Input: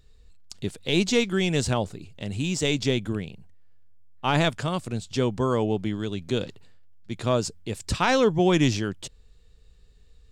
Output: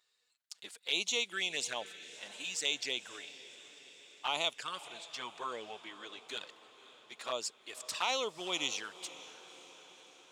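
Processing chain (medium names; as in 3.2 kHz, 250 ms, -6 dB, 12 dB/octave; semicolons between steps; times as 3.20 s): high-pass 1 kHz 12 dB/octave; touch-sensitive flanger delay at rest 8.3 ms, full sweep at -27 dBFS; 4.84–6.27 s: treble shelf 8.2 kHz -11 dB; on a send: echo that smears into a reverb 545 ms, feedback 61%, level -16 dB; on the sum: trim -2.5 dB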